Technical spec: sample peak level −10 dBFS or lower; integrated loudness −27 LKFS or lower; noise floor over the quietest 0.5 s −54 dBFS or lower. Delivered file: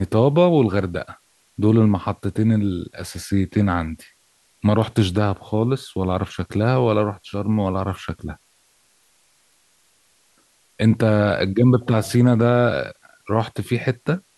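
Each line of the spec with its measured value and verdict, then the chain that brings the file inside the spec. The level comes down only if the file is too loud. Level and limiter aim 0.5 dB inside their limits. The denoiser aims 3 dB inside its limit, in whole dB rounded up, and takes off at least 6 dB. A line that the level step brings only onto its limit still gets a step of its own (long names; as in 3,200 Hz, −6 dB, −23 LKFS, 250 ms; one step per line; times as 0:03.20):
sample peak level −3.5 dBFS: out of spec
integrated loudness −20.0 LKFS: out of spec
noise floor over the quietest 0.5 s −60 dBFS: in spec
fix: level −7.5 dB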